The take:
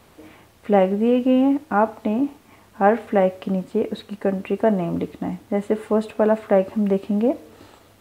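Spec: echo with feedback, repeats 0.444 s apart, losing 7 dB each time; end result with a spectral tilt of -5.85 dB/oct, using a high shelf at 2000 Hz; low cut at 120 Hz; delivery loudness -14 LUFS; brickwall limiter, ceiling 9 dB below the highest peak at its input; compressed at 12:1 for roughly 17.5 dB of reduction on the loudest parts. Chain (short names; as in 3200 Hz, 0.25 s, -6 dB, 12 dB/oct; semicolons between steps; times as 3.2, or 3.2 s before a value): HPF 120 Hz; high shelf 2000 Hz -4.5 dB; compressor 12:1, threshold -30 dBFS; limiter -26.5 dBFS; feedback echo 0.444 s, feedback 45%, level -7 dB; gain +23 dB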